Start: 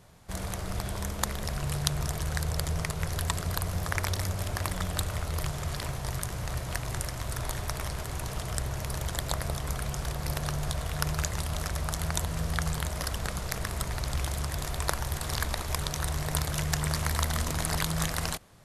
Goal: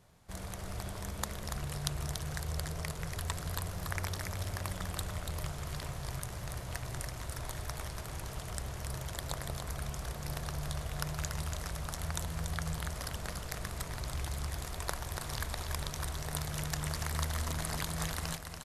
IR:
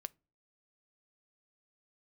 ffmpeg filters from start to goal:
-af "aecho=1:1:286:0.501,volume=0.422"

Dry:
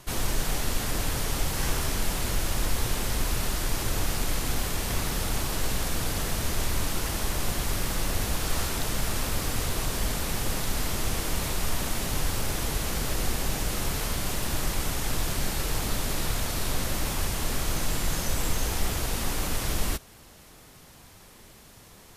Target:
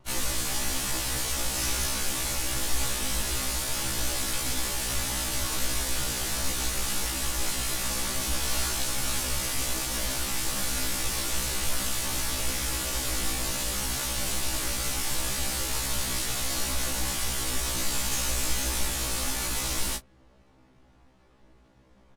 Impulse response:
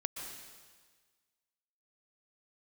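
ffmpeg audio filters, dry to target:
-filter_complex "[0:a]crystalizer=i=4.5:c=0,adynamicsmooth=sensitivity=5.5:basefreq=870,asplit=2[s0][s1];[s1]adelay=19,volume=0.398[s2];[s0][s2]amix=inputs=2:normalize=0,afftfilt=real='re*1.73*eq(mod(b,3),0)':imag='im*1.73*eq(mod(b,3),0)':win_size=2048:overlap=0.75,volume=0.708"

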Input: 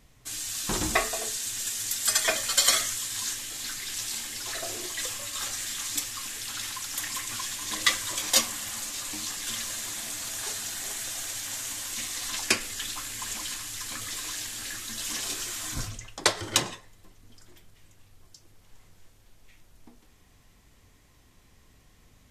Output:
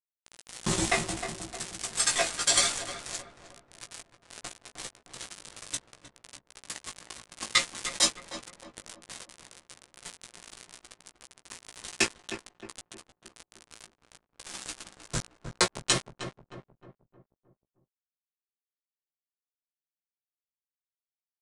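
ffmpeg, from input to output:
-filter_complex "[0:a]equalizer=f=140:t=o:w=1.5:g=7.5,aecho=1:1:5.9:0.68,acrusher=bits=3:mix=0:aa=0.000001,flanger=delay=16:depth=2.8:speed=0.6,aeval=exprs='sgn(val(0))*max(abs(val(0))-0.0141,0)':c=same,asplit=2[s0][s1];[s1]adelay=323,lowpass=f=1200:p=1,volume=0.447,asplit=2[s2][s3];[s3]adelay=323,lowpass=f=1200:p=1,volume=0.5,asplit=2[s4][s5];[s5]adelay=323,lowpass=f=1200:p=1,volume=0.5,asplit=2[s6][s7];[s7]adelay=323,lowpass=f=1200:p=1,volume=0.5,asplit=2[s8][s9];[s9]adelay=323,lowpass=f=1200:p=1,volume=0.5,asplit=2[s10][s11];[s11]adelay=323,lowpass=f=1200:p=1,volume=0.5[s12];[s0][s2][s4][s6][s8][s10][s12]amix=inputs=7:normalize=0,asetrate=45938,aresample=44100,aresample=22050,aresample=44100,volume=1.12"

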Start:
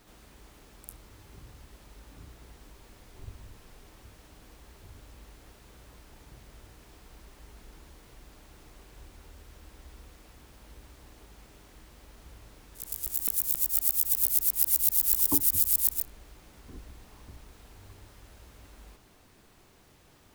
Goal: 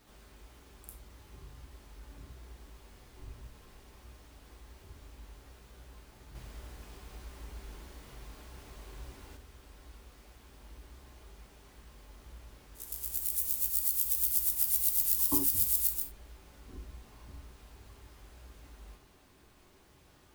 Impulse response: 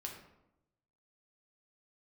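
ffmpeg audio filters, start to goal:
-filter_complex "[1:a]atrim=start_sample=2205,atrim=end_sample=4410[s0];[0:a][s0]afir=irnorm=-1:irlink=0,asettb=1/sr,asplit=3[s1][s2][s3];[s1]atrim=end=6.354[s4];[s2]atrim=start=6.35:end=9.37,asetpts=PTS-STARTPTS,afade=t=in:d=0.004:c=qsin,afade=t=out:st=3.016:d=0.004:c=qsin,acontrast=29[s5];[s3]atrim=start=9.366[s6];[s4][s5]acrossfade=d=0.004:c1=hsin:c2=qsin[s7];[s7][s6]acrossfade=d=0.004:c1=qsin:c2=hsin"

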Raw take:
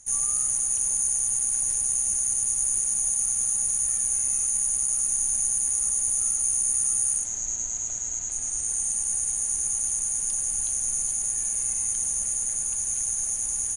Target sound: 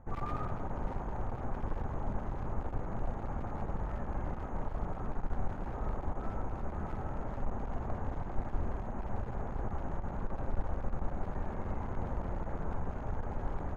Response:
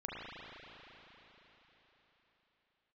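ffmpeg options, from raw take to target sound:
-filter_complex "[0:a]lowpass=f=1200:w=0.5412,lowpass=f=1200:w=1.3066,aeval=exprs='clip(val(0),-1,0.00398)':c=same,asplit=2[s0][s1];[1:a]atrim=start_sample=2205,afade=t=out:st=0.33:d=0.01,atrim=end_sample=14994,adelay=40[s2];[s1][s2]afir=irnorm=-1:irlink=0,volume=0.355[s3];[s0][s3]amix=inputs=2:normalize=0,volume=4.47"

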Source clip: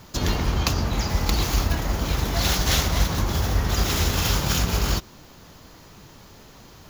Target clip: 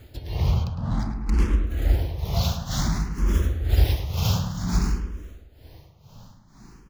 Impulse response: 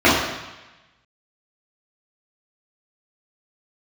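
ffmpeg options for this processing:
-filter_complex "[0:a]tremolo=f=2.1:d=0.87,asettb=1/sr,asplit=3[s0][s1][s2];[s0]atrim=end=0.644[s3];[s1]atrim=start=0.64:end=1.67,asetpts=PTS-STARTPTS,afade=t=in:d=0.004:c=qsin,afade=t=out:st=1.026:d=0.004:c=qsin,adynamicsmooth=sensitivity=5:basefreq=990[s4];[s2]atrim=start=1.666[s5];[s3][s4]acrossfade=d=0.004:c1=hsin:c2=qsin[s6];[s6][s5]acrossfade=d=0.004:c1=qsin:c2=hsin,lowshelf=f=270:g=11,asplit=2[s7][s8];[s8]adelay=106,lowpass=f=2900:p=1,volume=0.447,asplit=2[s9][s10];[s10]adelay=106,lowpass=f=2900:p=1,volume=0.54,asplit=2[s11][s12];[s12]adelay=106,lowpass=f=2900:p=1,volume=0.54,asplit=2[s13][s14];[s14]adelay=106,lowpass=f=2900:p=1,volume=0.54,asplit=2[s15][s16];[s16]adelay=106,lowpass=f=2900:p=1,volume=0.54,asplit=2[s17][s18];[s18]adelay=106,lowpass=f=2900:p=1,volume=0.54,asplit=2[s19][s20];[s20]adelay=106,lowpass=f=2900:p=1,volume=0.54[s21];[s7][s9][s11][s13][s15][s17][s19][s21]amix=inputs=8:normalize=0,asplit=2[s22][s23];[s23]afreqshift=0.55[s24];[s22][s24]amix=inputs=2:normalize=1,volume=0.708"

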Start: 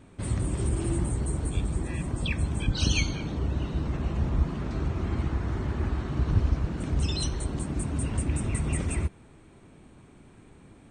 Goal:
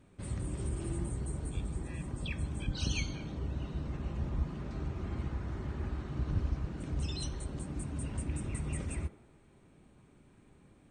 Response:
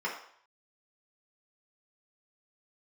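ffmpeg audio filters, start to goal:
-filter_complex "[0:a]asplit=2[s0][s1];[1:a]atrim=start_sample=2205,asetrate=27342,aresample=44100[s2];[s1][s2]afir=irnorm=-1:irlink=0,volume=0.112[s3];[s0][s3]amix=inputs=2:normalize=0,volume=0.376"

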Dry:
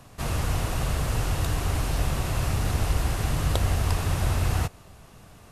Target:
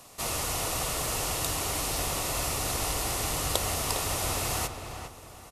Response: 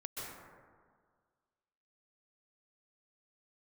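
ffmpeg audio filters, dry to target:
-filter_complex "[0:a]bass=f=250:g=-13,treble=f=4000:g=8,bandreject=f=1600:w=6.7,asplit=2[s0][s1];[s1]adelay=406,lowpass=f=2600:p=1,volume=0.447,asplit=2[s2][s3];[s3]adelay=406,lowpass=f=2600:p=1,volume=0.35,asplit=2[s4][s5];[s5]adelay=406,lowpass=f=2600:p=1,volume=0.35,asplit=2[s6][s7];[s7]adelay=406,lowpass=f=2600:p=1,volume=0.35[s8];[s2][s4][s6][s8]amix=inputs=4:normalize=0[s9];[s0][s9]amix=inputs=2:normalize=0"

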